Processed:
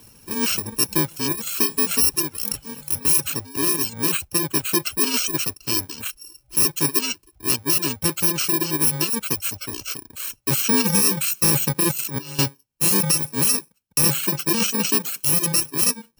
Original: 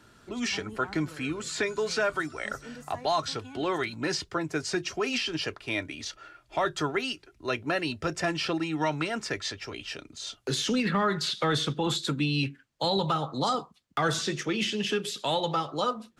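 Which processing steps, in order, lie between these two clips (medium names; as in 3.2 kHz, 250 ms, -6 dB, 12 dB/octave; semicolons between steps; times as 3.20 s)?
bit-reversed sample order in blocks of 64 samples; 11.91–12.39 s: compressor with a negative ratio -37 dBFS, ratio -1; reverb removal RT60 0.73 s; trim +9 dB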